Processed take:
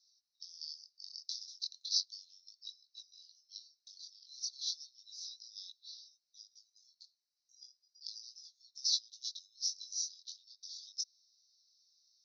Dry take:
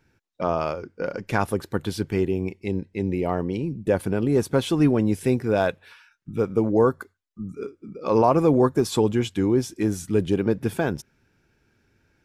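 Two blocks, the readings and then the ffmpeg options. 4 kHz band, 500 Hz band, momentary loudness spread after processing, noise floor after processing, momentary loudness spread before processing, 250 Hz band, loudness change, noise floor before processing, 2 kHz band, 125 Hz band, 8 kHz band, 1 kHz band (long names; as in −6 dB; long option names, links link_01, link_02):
+1.5 dB, below −40 dB, 23 LU, below −85 dBFS, 12 LU, below −40 dB, −16.5 dB, −69 dBFS, below −40 dB, below −40 dB, −1.0 dB, below −40 dB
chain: -af "acompressor=threshold=-25dB:ratio=6,flanger=delay=16.5:depth=7.1:speed=0.34,asuperpass=centerf=4900:order=12:qfactor=2.2,volume=13.5dB"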